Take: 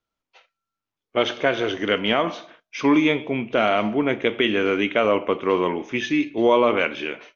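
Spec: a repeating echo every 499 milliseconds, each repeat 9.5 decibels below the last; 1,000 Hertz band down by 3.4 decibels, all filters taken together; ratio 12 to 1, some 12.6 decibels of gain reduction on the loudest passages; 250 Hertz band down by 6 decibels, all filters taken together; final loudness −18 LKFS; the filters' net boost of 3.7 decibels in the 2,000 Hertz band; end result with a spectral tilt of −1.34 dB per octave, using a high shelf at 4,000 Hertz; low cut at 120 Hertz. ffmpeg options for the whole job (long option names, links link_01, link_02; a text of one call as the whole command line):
ffmpeg -i in.wav -af "highpass=120,equalizer=frequency=250:width_type=o:gain=-7.5,equalizer=frequency=1000:width_type=o:gain=-6,equalizer=frequency=2000:width_type=o:gain=5,highshelf=frequency=4000:gain=4,acompressor=threshold=-28dB:ratio=12,aecho=1:1:499|998|1497|1996:0.335|0.111|0.0365|0.012,volume=14dB" out.wav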